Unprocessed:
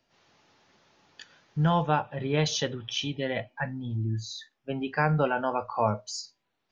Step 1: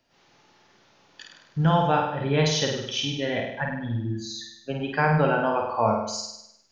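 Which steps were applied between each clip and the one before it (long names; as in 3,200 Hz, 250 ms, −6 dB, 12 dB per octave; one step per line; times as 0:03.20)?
flutter between parallel walls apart 8.7 metres, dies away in 0.81 s
level +2 dB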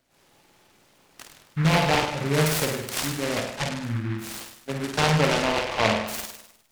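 short delay modulated by noise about 1,500 Hz, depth 0.16 ms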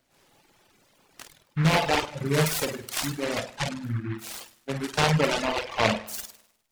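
reverb reduction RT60 1.2 s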